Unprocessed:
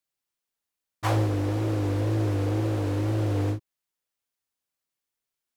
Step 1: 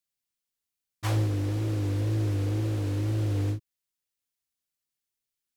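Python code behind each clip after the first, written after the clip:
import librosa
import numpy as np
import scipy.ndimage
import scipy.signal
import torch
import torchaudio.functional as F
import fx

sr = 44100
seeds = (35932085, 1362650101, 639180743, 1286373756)

y = fx.peak_eq(x, sr, hz=780.0, db=-9.0, octaves=2.5)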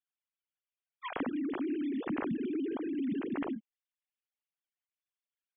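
y = fx.sine_speech(x, sr)
y = F.gain(torch.from_numpy(y), -7.5).numpy()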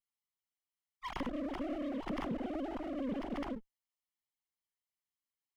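y = fx.lower_of_two(x, sr, delay_ms=0.97)
y = F.gain(torch.from_numpy(y), -1.5).numpy()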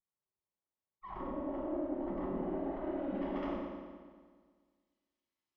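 y = 10.0 ** (-37.5 / 20.0) * np.tanh(x / 10.0 ** (-37.5 / 20.0))
y = fx.filter_sweep_lowpass(y, sr, from_hz=940.0, to_hz=4400.0, start_s=2.17, end_s=3.97, q=0.78)
y = fx.rev_fdn(y, sr, rt60_s=1.7, lf_ratio=1.05, hf_ratio=0.9, size_ms=16.0, drr_db=-6.0)
y = F.gain(torch.from_numpy(y), -2.0).numpy()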